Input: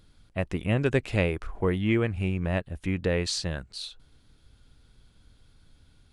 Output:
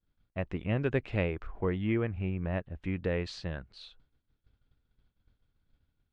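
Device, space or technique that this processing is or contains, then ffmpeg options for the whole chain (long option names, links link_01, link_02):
hearing-loss simulation: -filter_complex "[0:a]asettb=1/sr,asplit=3[link_01][link_02][link_03];[link_01]atrim=end=1.874[link_04];[link_02]atrim=start=1.87:end=2.83,asetpts=PTS-STARTPTS,afade=type=in:duration=0.004:curve=qsin,afade=type=out:start_time=0.956:duration=0.004:curve=qsin,highshelf=frequency=4800:gain=-11[link_05];[link_03]atrim=start=2.826[link_06];[link_04][link_05]acrossfade=duration=0.004:curve1=hsin:curve2=qsin[link_07];[link_07][link_06]acrossfade=duration=0.004:curve1=qsin:curve2=hsin,lowpass=2900,agate=range=-33dB:threshold=-47dB:ratio=3:detection=peak,volume=-5dB"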